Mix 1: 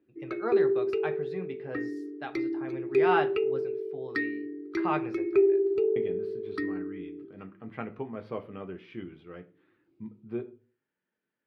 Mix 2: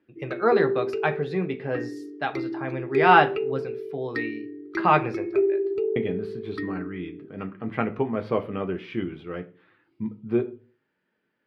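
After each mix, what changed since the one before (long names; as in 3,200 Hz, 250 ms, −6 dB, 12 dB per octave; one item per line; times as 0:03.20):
speech +11.0 dB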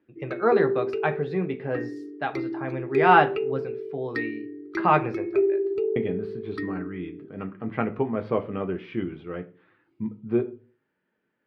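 speech: add low-pass filter 2,400 Hz 6 dB per octave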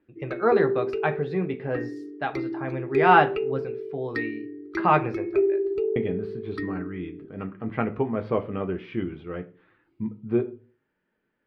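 master: remove high-pass filter 97 Hz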